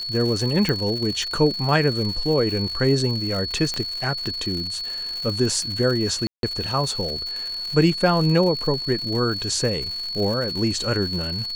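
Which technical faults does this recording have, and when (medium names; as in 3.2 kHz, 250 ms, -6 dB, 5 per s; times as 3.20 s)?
crackle 160 per s -28 dBFS
whine 4.4 kHz -27 dBFS
0.69 s: pop -9 dBFS
3.74 s: pop -12 dBFS
6.27–6.43 s: dropout 162 ms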